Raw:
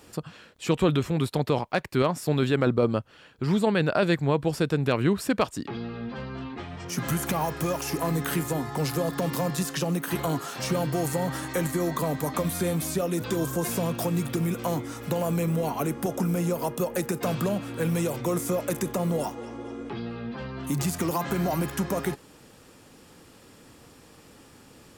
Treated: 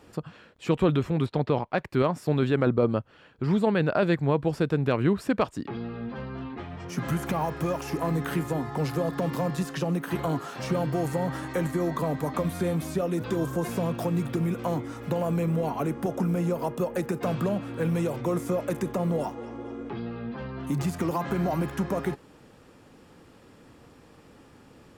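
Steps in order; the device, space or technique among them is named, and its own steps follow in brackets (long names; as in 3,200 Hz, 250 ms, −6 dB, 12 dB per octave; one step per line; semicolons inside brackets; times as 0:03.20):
0:01.26–0:01.78: low-pass filter 5,100 Hz 12 dB per octave
through cloth (high-shelf EQ 3,800 Hz −12.5 dB)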